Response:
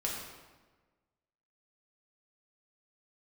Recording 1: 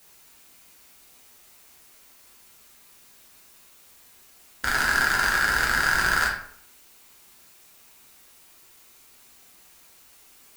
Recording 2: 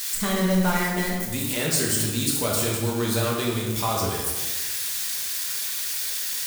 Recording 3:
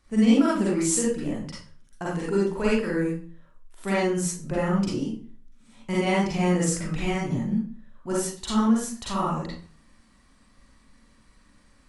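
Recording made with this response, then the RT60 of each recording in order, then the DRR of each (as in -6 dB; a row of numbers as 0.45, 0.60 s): 2; 0.65, 1.3, 0.45 s; -3.5, -3.5, -7.0 dB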